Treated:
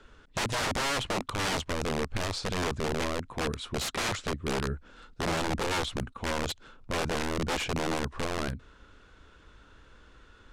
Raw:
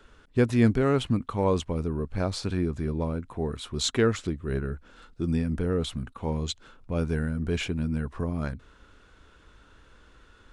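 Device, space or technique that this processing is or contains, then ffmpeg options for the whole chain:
overflowing digital effects unit: -af "aeval=exprs='(mod(15.8*val(0)+1,2)-1)/15.8':c=same,lowpass=8200"

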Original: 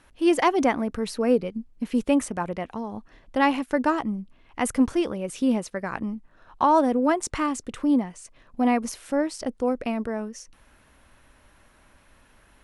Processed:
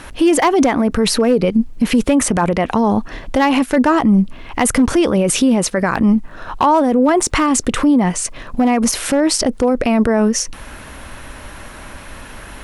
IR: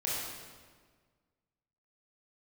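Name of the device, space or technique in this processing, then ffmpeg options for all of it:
loud club master: -af "acompressor=threshold=0.0708:ratio=3,asoftclip=type=hard:threshold=0.119,alimiter=level_in=26.6:limit=0.891:release=50:level=0:latency=1,volume=0.531"

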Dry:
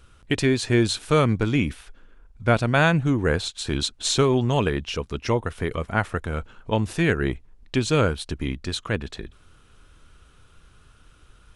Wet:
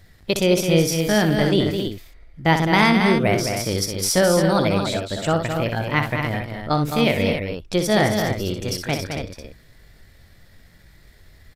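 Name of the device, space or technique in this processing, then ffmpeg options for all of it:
chipmunk voice: -filter_complex "[0:a]asettb=1/sr,asplit=3[s0][s1][s2];[s0]atrim=end=0.574[s3];[s1]atrim=start=0.57:end=1.24,asetpts=PTS-STARTPTS,afade=t=in:d=0.004:c=qsin,afade=t=out:st=0.666:d=0.004:c=qsin,equalizer=f=640:w=0.79:g=-5.5[s4];[s2]atrim=start=1.236[s5];[s3][s4]acrossfade=d=0.004:c1=hsin:c2=qsin[s6];[s6][s5]acrossfade=d=0.004:c1=qsin:c2=hsin,asetrate=60591,aresample=44100,atempo=0.727827,aecho=1:1:61.22|212.8|274.1:0.398|0.447|0.398,volume=1.19"

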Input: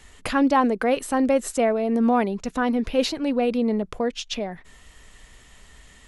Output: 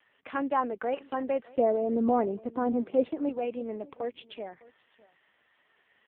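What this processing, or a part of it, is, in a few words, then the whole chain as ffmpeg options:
satellite phone: -filter_complex "[0:a]asettb=1/sr,asplit=3[s0][s1][s2];[s0]atrim=end=1.574[s3];[s1]atrim=start=1.57:end=3.29,asetpts=PTS-STARTPTS,afade=t=in:d=0.004:c=qsin,afade=t=out:st=1.716:d=0.004:c=qsin,tiltshelf=f=1100:g=9.5[s4];[s2]atrim=start=3.286[s5];[s3][s4]acrossfade=d=0.004:c1=hsin:c2=qsin[s6];[s6][s5]acrossfade=d=0.004:c1=qsin:c2=hsin,highpass=350,lowpass=3100,aecho=1:1:607:0.0794,volume=0.447" -ar 8000 -c:a libopencore_amrnb -b:a 5150

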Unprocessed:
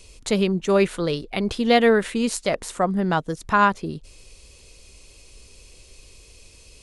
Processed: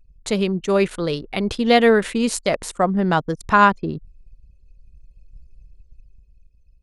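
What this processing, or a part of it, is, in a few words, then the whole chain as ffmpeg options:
voice memo with heavy noise removal: -af "anlmdn=1.58,dynaudnorm=f=290:g=9:m=2.82"

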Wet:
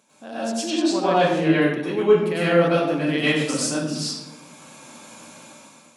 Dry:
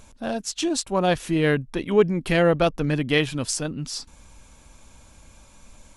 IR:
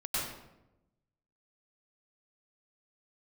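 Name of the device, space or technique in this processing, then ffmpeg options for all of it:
far laptop microphone: -filter_complex "[1:a]atrim=start_sample=2205[s0];[0:a][s0]afir=irnorm=-1:irlink=0,highpass=f=190:w=0.5412,highpass=f=190:w=1.3066,dynaudnorm=f=290:g=5:m=3.98,asettb=1/sr,asplit=3[s1][s2][s3];[s1]atrim=end=0.704[s4];[s2]atrim=start=0.7:end=1.62,asetpts=PTS-STARTPTS,afade=t=in:d=0.004:c=qsin,afade=t=out:st=0.916:d=0.004:c=qsin,lowpass=5400[s5];[s3]atrim=start=1.616[s6];[s4][s5]acrossfade=d=0.004:c1=hsin:c2=qsin[s7];[s7][s6]acrossfade=d=0.004:c1=qsin:c2=hsin,volume=0.562"

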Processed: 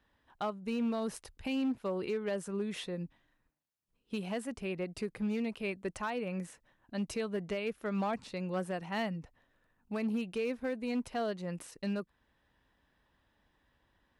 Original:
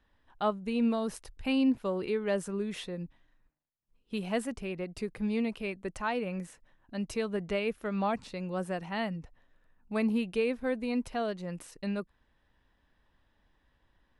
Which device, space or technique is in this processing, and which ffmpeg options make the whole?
limiter into clipper: -af "alimiter=level_in=1.12:limit=0.0631:level=0:latency=1:release=314,volume=0.891,asoftclip=type=hard:threshold=0.0422,highpass=f=72:p=1"

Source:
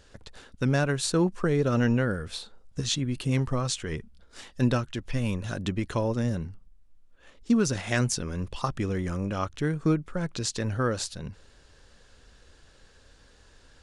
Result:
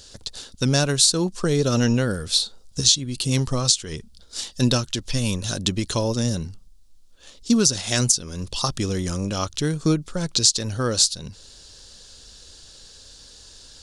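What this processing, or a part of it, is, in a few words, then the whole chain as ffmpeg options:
over-bright horn tweeter: -af "highshelf=f=3000:t=q:w=1.5:g=12.5,alimiter=limit=0.376:level=0:latency=1:release=451,volume=1.58"

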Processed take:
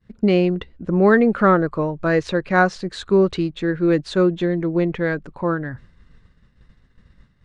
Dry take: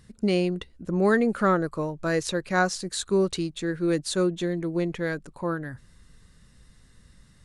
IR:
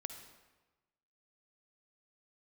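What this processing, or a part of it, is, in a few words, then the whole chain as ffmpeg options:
hearing-loss simulation: -af "lowpass=2800,agate=range=0.0224:threshold=0.00447:ratio=3:detection=peak,volume=2.24"

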